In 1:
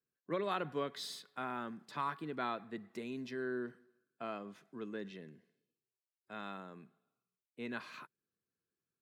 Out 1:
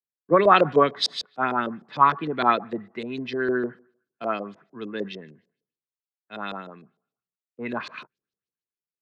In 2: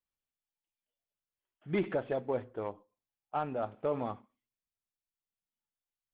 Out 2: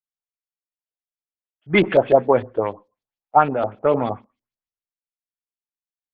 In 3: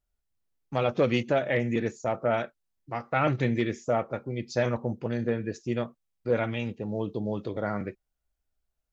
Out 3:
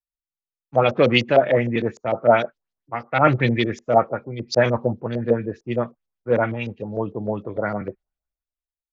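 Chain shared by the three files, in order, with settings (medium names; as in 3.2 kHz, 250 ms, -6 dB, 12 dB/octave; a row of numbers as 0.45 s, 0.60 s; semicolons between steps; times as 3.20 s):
LFO low-pass saw up 6.6 Hz 450–6000 Hz; three bands expanded up and down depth 70%; peak normalisation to -1.5 dBFS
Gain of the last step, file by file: +12.5 dB, +13.0 dB, +5.5 dB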